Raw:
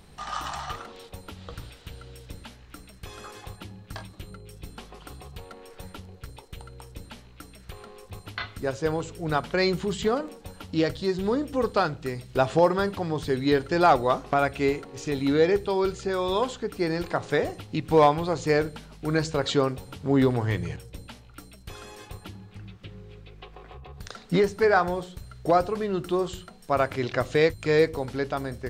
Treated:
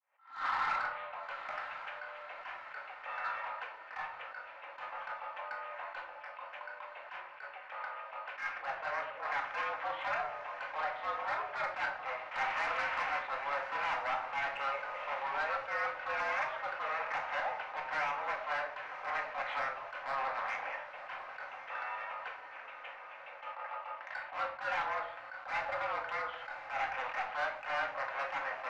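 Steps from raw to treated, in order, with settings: opening faded in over 0.65 s; compressor 6:1, threshold -30 dBFS, peak gain reduction 15.5 dB; wavefolder -32.5 dBFS; 12.31–13.19 requantised 6-bit, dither triangular; mistuned SSB +130 Hz 590–2300 Hz; soft clip -36.5 dBFS, distortion -17 dB; diffused feedback echo 1.054 s, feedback 58%, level -12.5 dB; reverb RT60 0.55 s, pre-delay 4 ms, DRR 1 dB; attack slew limiter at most 140 dB/s; gain +7 dB

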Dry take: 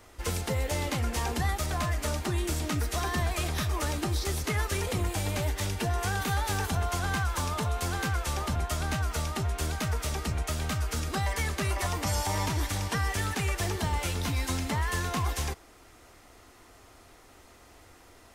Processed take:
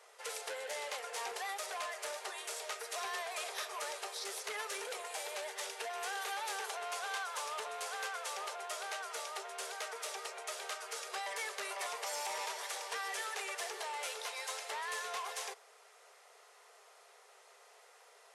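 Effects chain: brick-wall FIR band-pass 390–12000 Hz; core saturation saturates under 3400 Hz; gain -4.5 dB

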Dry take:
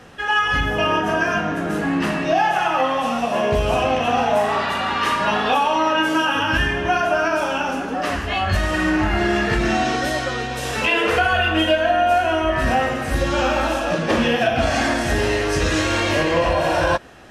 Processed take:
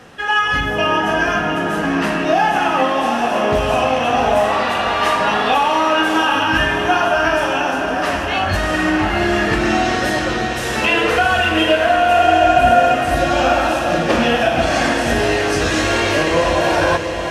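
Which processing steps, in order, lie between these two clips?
low shelf 84 Hz -7 dB; spectral repair 12.18–12.92, 600–7800 Hz before; diffused feedback echo 0.717 s, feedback 53%, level -7 dB; gain +2.5 dB

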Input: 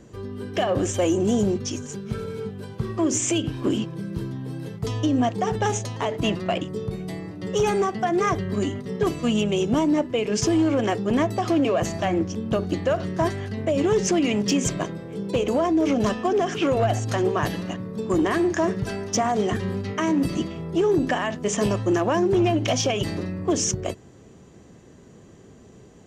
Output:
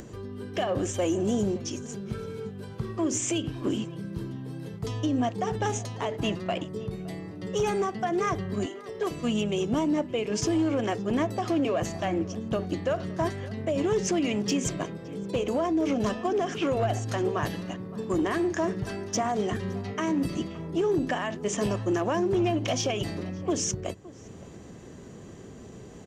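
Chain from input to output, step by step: 8.66–9.11 HPF 350 Hz 24 dB/oct; upward compressor, threshold -30 dBFS; outdoor echo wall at 97 m, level -19 dB; gain -5 dB

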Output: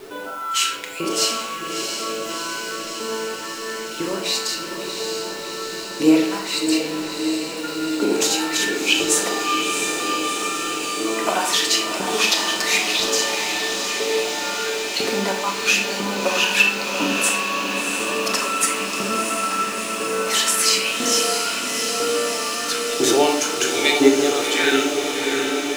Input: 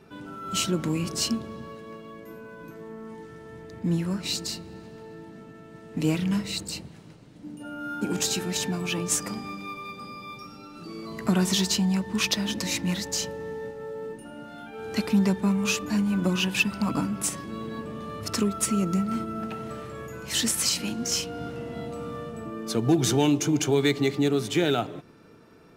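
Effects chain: HPF 170 Hz 6 dB/oct; in parallel at -1 dB: compressor 6:1, threshold -37 dBFS, peak gain reduction 18 dB; on the sum: LFO high-pass saw up 1 Hz 330–3500 Hz; requantised 8-bit, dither none; diffused feedback echo 0.686 s, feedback 79%, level -5.5 dB; on a send at -2.5 dB: reverb RT60 0.65 s, pre-delay 7 ms; on the sum: gain +3.5 dB

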